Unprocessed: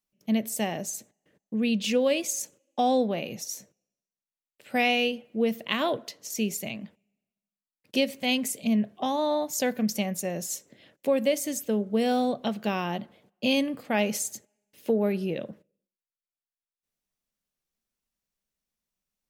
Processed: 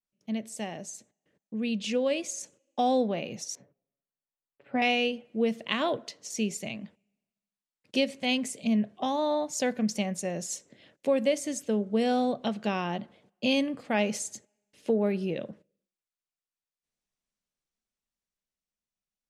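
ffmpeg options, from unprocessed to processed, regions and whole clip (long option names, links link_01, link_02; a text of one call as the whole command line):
ffmpeg -i in.wav -filter_complex "[0:a]asettb=1/sr,asplit=3[link_01][link_02][link_03];[link_01]atrim=end=3.554[link_04];[link_02]atrim=start=3.55:end=4.82,asetpts=PTS-STARTPTS,afade=type=in:duration=0.004:curve=qsin,afade=type=out:start_time=1.266:duration=0.004:curve=qsin,lowpass=1400,aecho=1:1:7.2:0.54,atrim=end_sample=56007[link_05];[link_03]atrim=start=4.816[link_06];[link_04][link_05]acrossfade=duration=0.004:curve1=hsin:curve2=qsin[link_07];[link_07][link_06]acrossfade=duration=0.004:curve1=qsin:curve2=hsin,lowpass=frequency=9300:width=0.5412,lowpass=frequency=9300:width=1.3066,dynaudnorm=framelen=450:gausssize=9:maxgain=6dB,adynamicequalizer=threshold=0.0224:dfrequency=2700:dqfactor=0.7:tfrequency=2700:tqfactor=0.7:attack=5:release=100:ratio=0.375:range=2:mode=cutabove:tftype=highshelf,volume=-7dB" out.wav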